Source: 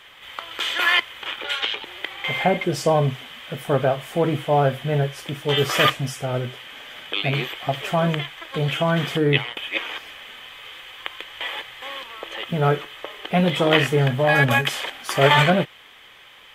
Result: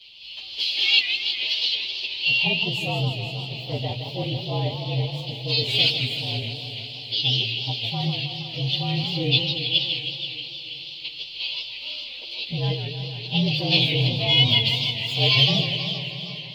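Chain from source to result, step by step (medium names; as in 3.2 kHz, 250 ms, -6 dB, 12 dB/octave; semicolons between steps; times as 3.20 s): frequency axis rescaled in octaves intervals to 113%; FFT filter 190 Hz 0 dB, 960 Hz -11 dB, 1.5 kHz -29 dB, 3 kHz +15 dB, 7.9 kHz -10 dB; two-band feedback delay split 840 Hz, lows 370 ms, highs 486 ms, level -14.5 dB; modulated delay 158 ms, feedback 68%, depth 200 cents, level -8 dB; trim -2.5 dB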